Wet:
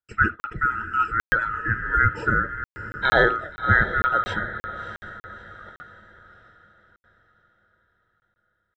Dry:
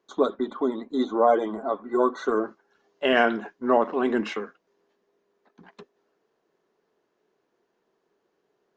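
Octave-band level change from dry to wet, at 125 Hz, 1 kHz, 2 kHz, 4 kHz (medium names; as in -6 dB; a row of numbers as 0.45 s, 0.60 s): no reading, +3.5 dB, +11.5 dB, 0.0 dB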